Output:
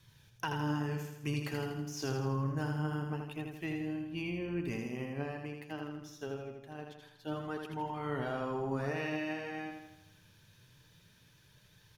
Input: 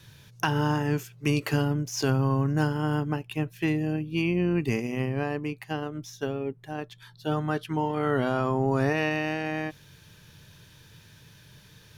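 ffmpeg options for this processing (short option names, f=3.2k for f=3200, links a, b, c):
-af "flanger=delay=0.9:depth=9.2:regen=61:speed=0.25:shape=sinusoidal,aecho=1:1:81|162|243|324|405|486|567:0.562|0.298|0.158|0.0837|0.0444|0.0235|0.0125,volume=-7dB"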